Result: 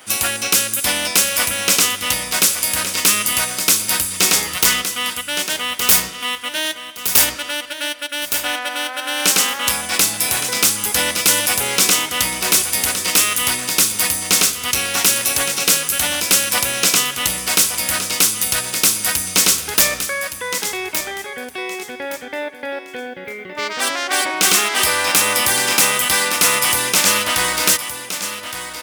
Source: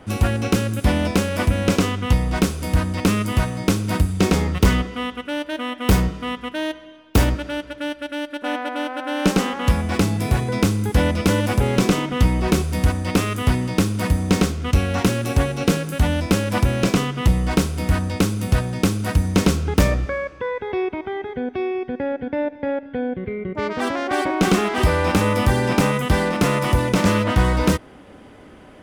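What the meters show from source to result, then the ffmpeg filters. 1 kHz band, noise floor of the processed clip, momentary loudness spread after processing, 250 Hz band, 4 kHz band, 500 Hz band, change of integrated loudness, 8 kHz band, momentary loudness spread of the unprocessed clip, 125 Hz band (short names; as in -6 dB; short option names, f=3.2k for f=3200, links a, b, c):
+1.5 dB, -33 dBFS, 11 LU, -11.0 dB, +12.5 dB, -4.5 dB, +5.5 dB, +18.5 dB, 8 LU, -17.0 dB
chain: -af "aderivative,aecho=1:1:1167|2334|3501:0.299|0.0687|0.0158,aeval=exprs='0.447*sin(PI/2*3.55*val(0)/0.447)':c=same,volume=3.5dB"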